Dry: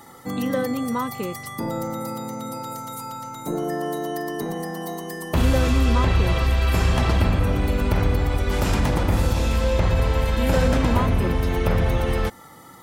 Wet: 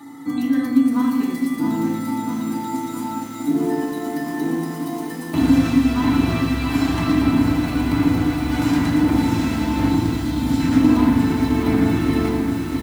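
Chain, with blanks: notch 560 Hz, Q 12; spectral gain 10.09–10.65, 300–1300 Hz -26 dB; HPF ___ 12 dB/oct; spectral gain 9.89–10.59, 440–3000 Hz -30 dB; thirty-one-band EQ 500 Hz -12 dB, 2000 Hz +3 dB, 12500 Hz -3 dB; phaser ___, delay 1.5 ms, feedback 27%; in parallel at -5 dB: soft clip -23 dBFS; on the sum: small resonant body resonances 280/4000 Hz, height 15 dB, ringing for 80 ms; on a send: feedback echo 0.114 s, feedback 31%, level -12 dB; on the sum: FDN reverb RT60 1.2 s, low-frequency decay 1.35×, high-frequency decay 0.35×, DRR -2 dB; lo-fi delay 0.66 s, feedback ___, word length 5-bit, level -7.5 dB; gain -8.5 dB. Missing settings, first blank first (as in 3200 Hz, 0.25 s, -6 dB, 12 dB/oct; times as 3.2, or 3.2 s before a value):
130 Hz, 1.1 Hz, 80%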